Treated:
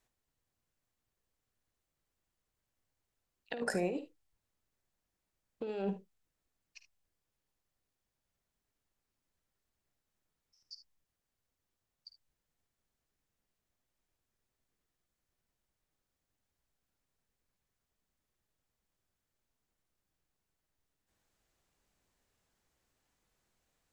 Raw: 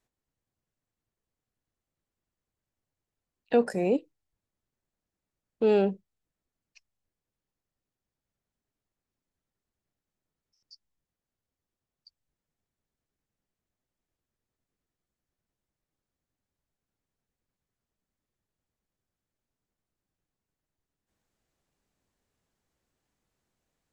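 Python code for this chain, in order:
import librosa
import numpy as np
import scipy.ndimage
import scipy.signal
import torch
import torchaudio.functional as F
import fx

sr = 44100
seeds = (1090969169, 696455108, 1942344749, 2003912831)

y = fx.peak_eq(x, sr, hz=200.0, db=-5.0, octaves=3.0)
y = fx.over_compress(y, sr, threshold_db=-33.0, ratio=-1.0)
y = fx.room_early_taps(y, sr, ms=(51, 74), db=(-12.5, -13.5))
y = y * librosa.db_to_amplitude(-3.0)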